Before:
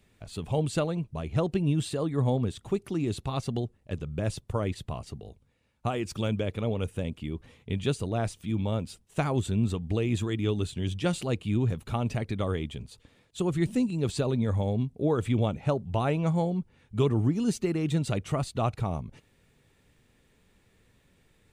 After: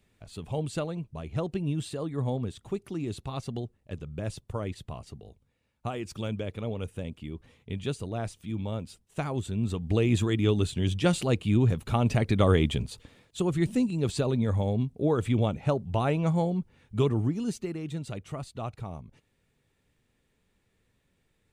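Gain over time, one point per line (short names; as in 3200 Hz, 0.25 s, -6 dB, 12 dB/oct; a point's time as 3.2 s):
9.55 s -4 dB
9.99 s +3.5 dB
11.91 s +3.5 dB
12.73 s +10 dB
13.45 s +0.5 dB
16.96 s +0.5 dB
17.9 s -8 dB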